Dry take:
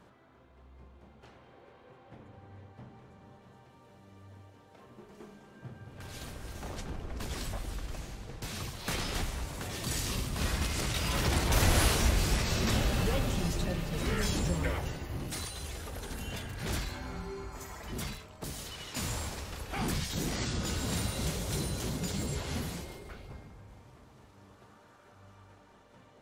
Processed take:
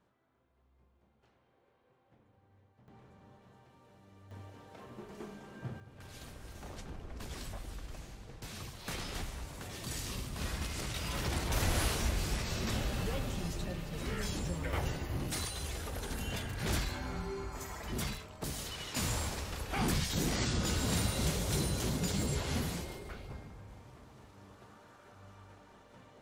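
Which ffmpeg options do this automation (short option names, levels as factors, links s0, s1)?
-af "asetnsamples=n=441:p=0,asendcmd='2.88 volume volume -4dB;4.31 volume volume 4dB;5.8 volume volume -6dB;14.73 volume volume 1dB',volume=0.178"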